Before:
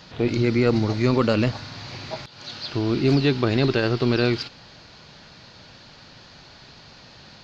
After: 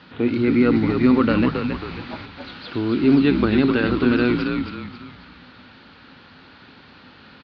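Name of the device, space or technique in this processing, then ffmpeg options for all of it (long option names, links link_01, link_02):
frequency-shifting delay pedal into a guitar cabinet: -filter_complex "[0:a]asplit=6[link_01][link_02][link_03][link_04][link_05][link_06];[link_02]adelay=271,afreqshift=-74,volume=-5dB[link_07];[link_03]adelay=542,afreqshift=-148,volume=-12.3dB[link_08];[link_04]adelay=813,afreqshift=-222,volume=-19.7dB[link_09];[link_05]adelay=1084,afreqshift=-296,volume=-27dB[link_10];[link_06]adelay=1355,afreqshift=-370,volume=-34.3dB[link_11];[link_01][link_07][link_08][link_09][link_10][link_11]amix=inputs=6:normalize=0,highpass=78,equalizer=frequency=130:width_type=q:width=4:gain=-7,equalizer=frequency=260:width_type=q:width=4:gain=8,equalizer=frequency=650:width_type=q:width=4:gain=-7,equalizer=frequency=1400:width_type=q:width=4:gain=5,lowpass=frequency=3500:width=0.5412,lowpass=frequency=3500:width=1.3066"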